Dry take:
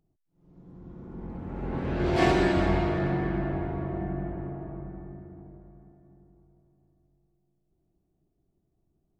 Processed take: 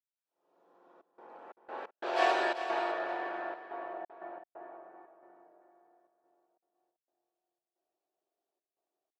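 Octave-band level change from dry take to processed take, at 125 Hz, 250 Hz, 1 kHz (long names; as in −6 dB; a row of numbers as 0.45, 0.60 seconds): below −40 dB, −18.0 dB, −1.0 dB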